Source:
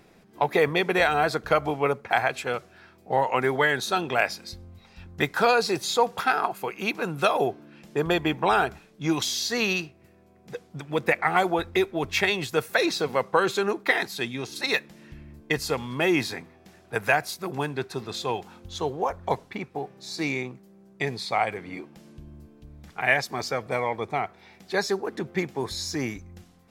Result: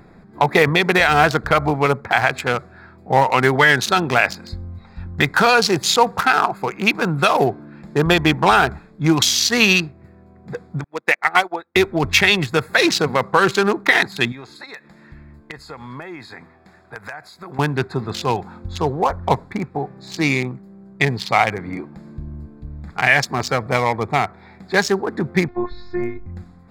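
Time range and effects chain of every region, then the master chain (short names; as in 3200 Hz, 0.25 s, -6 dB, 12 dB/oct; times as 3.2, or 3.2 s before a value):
10.84–11.76 HPF 330 Hz + bell 4300 Hz +4 dB 2.1 oct + upward expander 2.5:1, over -37 dBFS
14.32–17.59 low shelf 450 Hz -11.5 dB + compressor 4:1, threshold -39 dBFS
25.48–26.26 Gaussian blur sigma 2.6 samples + robotiser 355 Hz
whole clip: Wiener smoothing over 15 samples; bell 490 Hz -8 dB 2 oct; maximiser +15.5 dB; gain -1 dB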